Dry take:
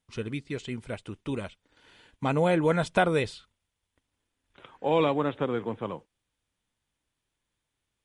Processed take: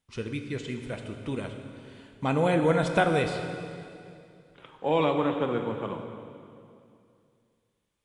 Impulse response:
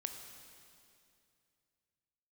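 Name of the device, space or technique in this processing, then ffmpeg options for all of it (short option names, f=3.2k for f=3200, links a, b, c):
stairwell: -filter_complex "[1:a]atrim=start_sample=2205[a];[0:a][a]afir=irnorm=-1:irlink=0,volume=2dB"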